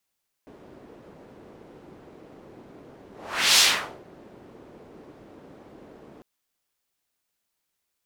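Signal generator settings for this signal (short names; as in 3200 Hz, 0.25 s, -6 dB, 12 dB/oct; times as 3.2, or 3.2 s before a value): whoosh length 5.75 s, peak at 3.11, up 0.49 s, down 0.47 s, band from 360 Hz, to 4600 Hz, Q 1.2, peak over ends 31.5 dB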